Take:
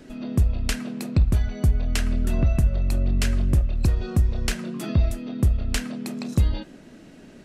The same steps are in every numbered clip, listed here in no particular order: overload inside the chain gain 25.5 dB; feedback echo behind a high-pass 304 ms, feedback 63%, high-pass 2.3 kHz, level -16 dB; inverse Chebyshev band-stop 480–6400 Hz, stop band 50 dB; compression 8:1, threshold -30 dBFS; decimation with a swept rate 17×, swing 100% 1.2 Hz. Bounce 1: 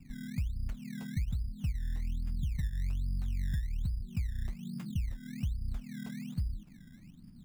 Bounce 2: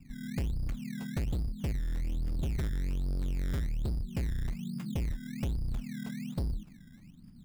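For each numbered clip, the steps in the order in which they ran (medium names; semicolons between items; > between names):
compression > feedback echo behind a high-pass > overload inside the chain > inverse Chebyshev band-stop > decimation with a swept rate; inverse Chebyshev band-stop > overload inside the chain > compression > feedback echo behind a high-pass > decimation with a swept rate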